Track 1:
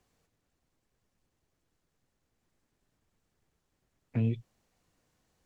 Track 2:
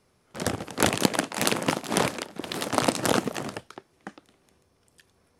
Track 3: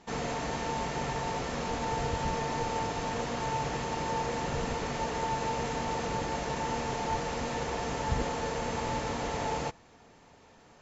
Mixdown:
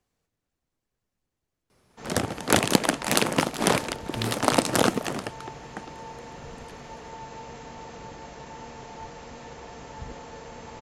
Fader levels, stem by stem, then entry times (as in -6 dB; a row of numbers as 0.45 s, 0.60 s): -4.5 dB, +2.0 dB, -9.0 dB; 0.00 s, 1.70 s, 1.90 s